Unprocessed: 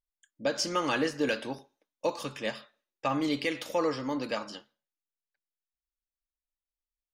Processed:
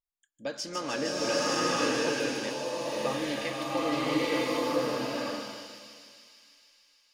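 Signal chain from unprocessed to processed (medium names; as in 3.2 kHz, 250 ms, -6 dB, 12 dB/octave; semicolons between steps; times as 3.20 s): on a send: feedback echo behind a high-pass 153 ms, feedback 80%, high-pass 4.5 kHz, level -3 dB; on the sum: swelling reverb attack 920 ms, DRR -8 dB; trim -6 dB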